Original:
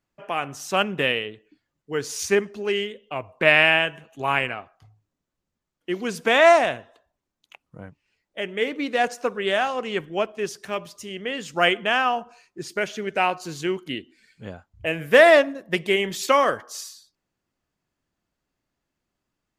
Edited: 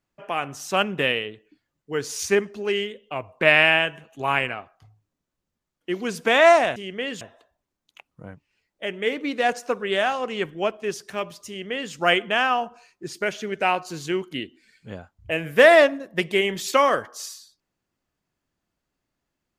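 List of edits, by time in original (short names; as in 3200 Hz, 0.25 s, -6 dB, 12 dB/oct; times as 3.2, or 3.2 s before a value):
11.03–11.48 copy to 6.76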